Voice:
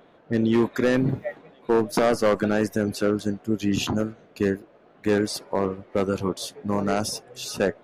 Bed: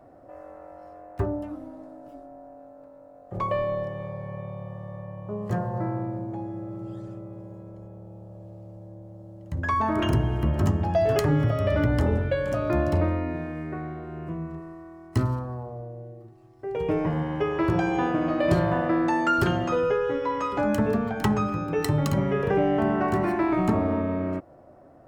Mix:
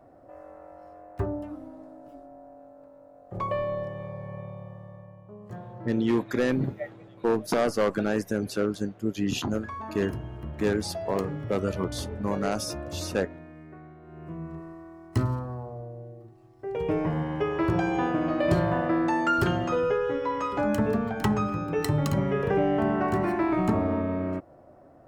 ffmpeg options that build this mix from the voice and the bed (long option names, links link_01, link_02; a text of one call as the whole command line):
ffmpeg -i stem1.wav -i stem2.wav -filter_complex "[0:a]adelay=5550,volume=-4dB[link_01];[1:a]volume=9dB,afade=type=out:start_time=4.38:duration=0.91:silence=0.298538,afade=type=in:start_time=14:duration=0.61:silence=0.266073[link_02];[link_01][link_02]amix=inputs=2:normalize=0" out.wav